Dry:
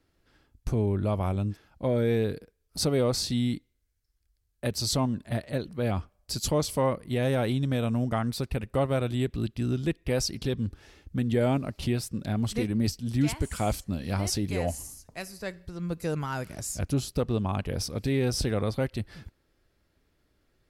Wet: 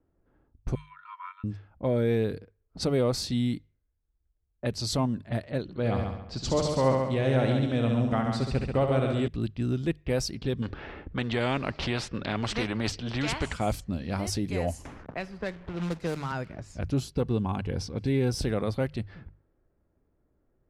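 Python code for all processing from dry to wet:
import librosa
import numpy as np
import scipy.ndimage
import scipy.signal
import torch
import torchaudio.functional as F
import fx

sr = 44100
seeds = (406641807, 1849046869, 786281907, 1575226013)

y = fx.chain(x, sr, fx.brickwall_highpass(low_hz=950.0),
    fx.high_shelf(hz=5400.0, db=-3.5),
    fx.comb(ms=2.2, depth=0.82), at=(0.75, 1.44))
y = fx.chain(y, sr, fx.lowpass(hz=8000.0, slope=24),
    fx.echo_heads(ms=68, heads='first and second', feedback_pct=43, wet_db=-7.0), at=(5.62, 9.28))
y = fx.chain(y, sr, fx.lowpass(hz=3700.0, slope=12),
    fx.spectral_comp(ratio=2.0), at=(10.62, 13.53))
y = fx.chain(y, sr, fx.quant_companded(bits=4),
    fx.band_squash(depth_pct=70), at=(14.85, 16.32))
y = fx.chain(y, sr, fx.low_shelf(hz=130.0, db=4.0),
    fx.notch_comb(f0_hz=620.0), at=(17.03, 18.41))
y = fx.env_lowpass(y, sr, base_hz=900.0, full_db=-24.0)
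y = fx.high_shelf(y, sr, hz=4600.0, db=-5.5)
y = fx.hum_notches(y, sr, base_hz=50, count=3)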